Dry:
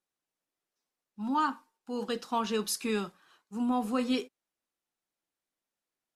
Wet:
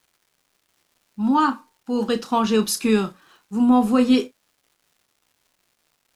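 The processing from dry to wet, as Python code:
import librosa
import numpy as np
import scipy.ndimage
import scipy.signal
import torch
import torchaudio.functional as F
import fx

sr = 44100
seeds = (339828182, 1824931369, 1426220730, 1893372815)

y = fx.low_shelf(x, sr, hz=360.0, db=7.0)
y = fx.dmg_crackle(y, sr, seeds[0], per_s=380.0, level_db=-59.0)
y = fx.doubler(y, sr, ms=32.0, db=-11)
y = F.gain(torch.from_numpy(y), 8.0).numpy()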